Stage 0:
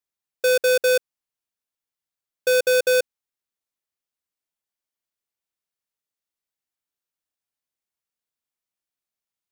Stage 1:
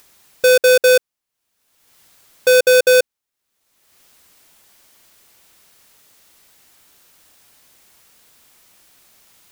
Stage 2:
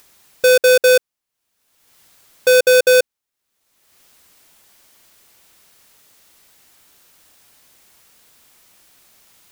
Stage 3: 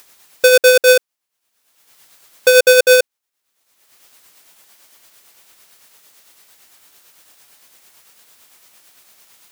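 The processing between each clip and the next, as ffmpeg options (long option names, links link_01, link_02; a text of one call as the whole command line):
ffmpeg -i in.wav -af "acompressor=mode=upward:threshold=-36dB:ratio=2.5,volume=7dB" out.wav
ffmpeg -i in.wav -af anull out.wav
ffmpeg -i in.wav -af "lowshelf=frequency=260:gain=-9.5,tremolo=f=8.9:d=0.39,volume=5dB" out.wav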